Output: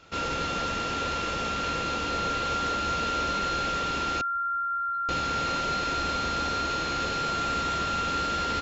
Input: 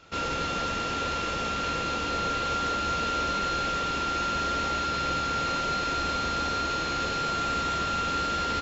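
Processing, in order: 4.21–5.09 s: spectral contrast enhancement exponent 3.6

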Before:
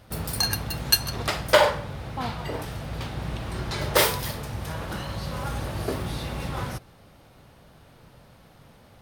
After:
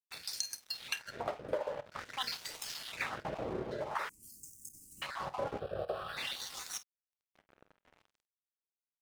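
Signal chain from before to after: random holes in the spectrogram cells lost 24%; LFO band-pass sine 0.49 Hz 430–6600 Hz; compression 5:1, threshold -40 dBFS, peak gain reduction 19 dB; crossover distortion -55.5 dBFS; 5.59–6.17 s: static phaser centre 1.4 kHz, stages 8; early reflections 29 ms -17 dB, 50 ms -17 dB; gain riding 0.5 s; 4.09–5.02 s: elliptic band-stop 290–7700 Hz, stop band 40 dB; trim +8.5 dB

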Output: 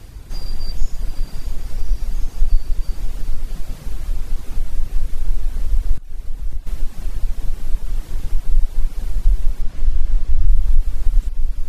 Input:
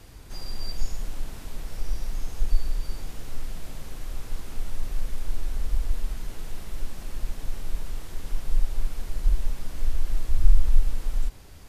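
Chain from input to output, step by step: bass shelf 180 Hz +8 dB; 5.96–6.67 s: inverted gate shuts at -15 dBFS, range -25 dB; 9.62–10.48 s: distance through air 51 m; on a send: echo that smears into a reverb 689 ms, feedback 50%, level -9 dB; on the sum: reverb removal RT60 0.63 s; in parallel at 0 dB: compression, threshold -19 dBFS, peak gain reduction 19 dB; on the sum: loudness maximiser -0.5 dB; trim -1 dB

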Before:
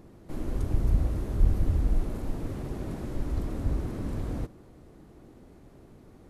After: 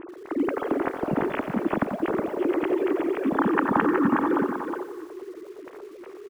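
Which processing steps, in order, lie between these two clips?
formants replaced by sine waves; level-controlled noise filter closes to 2.4 kHz, open at -20.5 dBFS; time-frequency box 3.37–4.68 s, 810–1900 Hz +10 dB; delay 367 ms -6 dB; bit-crushed delay 89 ms, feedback 55%, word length 8-bit, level -10 dB

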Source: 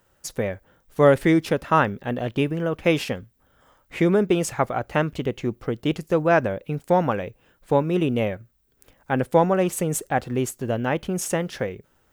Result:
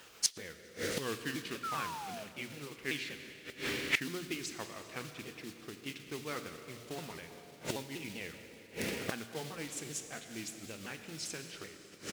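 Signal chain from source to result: sawtooth pitch modulation -5 st, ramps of 194 ms; Schroeder reverb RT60 2.5 s, combs from 27 ms, DRR 8 dB; painted sound fall, 1.63–2.24 s, 620–1400 Hz -21 dBFS; frequency-shifting echo 197 ms, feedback 59%, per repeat -94 Hz, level -18 dB; dynamic bell 580 Hz, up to -7 dB, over -32 dBFS, Q 1; hum notches 60/120/180 Hz; inverted gate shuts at -29 dBFS, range -24 dB; modulation noise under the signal 15 dB; frequency weighting D; trim +6.5 dB

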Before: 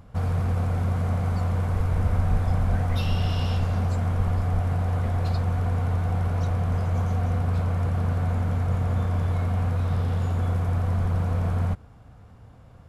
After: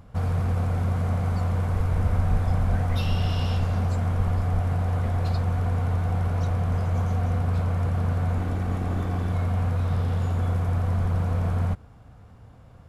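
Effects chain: 8.38–9.34 s: comb filter that takes the minimum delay 2.6 ms

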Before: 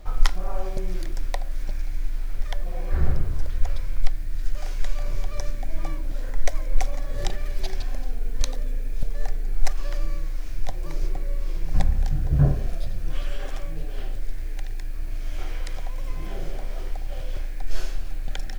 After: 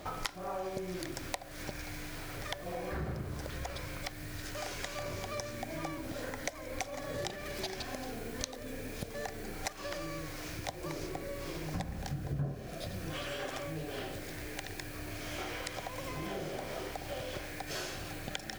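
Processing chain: high-pass 140 Hz 12 dB/octave; compression 4:1, threshold -42 dBFS, peak gain reduction 20.5 dB; trim +6 dB

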